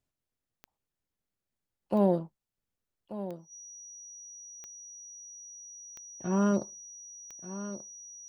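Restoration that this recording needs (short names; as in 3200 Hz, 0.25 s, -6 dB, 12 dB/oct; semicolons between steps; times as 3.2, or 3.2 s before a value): de-click; notch 5800 Hz, Q 30; inverse comb 1.184 s -13 dB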